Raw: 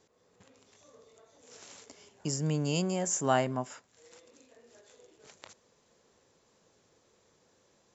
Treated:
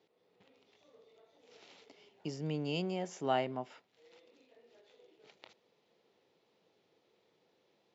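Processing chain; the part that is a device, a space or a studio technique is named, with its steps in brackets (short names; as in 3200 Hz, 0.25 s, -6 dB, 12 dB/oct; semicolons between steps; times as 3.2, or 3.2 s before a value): kitchen radio (speaker cabinet 200–4100 Hz, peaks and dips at 240 Hz -5 dB, 570 Hz -4 dB, 1100 Hz -8 dB, 1600 Hz -8 dB); gain -2 dB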